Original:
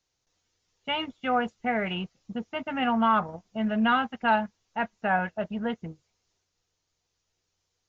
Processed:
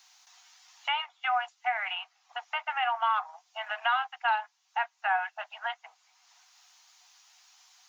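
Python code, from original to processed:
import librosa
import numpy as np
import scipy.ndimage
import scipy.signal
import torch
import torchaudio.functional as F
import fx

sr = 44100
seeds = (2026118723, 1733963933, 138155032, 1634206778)

y = scipy.signal.sosfilt(scipy.signal.cheby1(6, 1.0, 730.0, 'highpass', fs=sr, output='sos'), x)
y = fx.band_squash(y, sr, depth_pct=70)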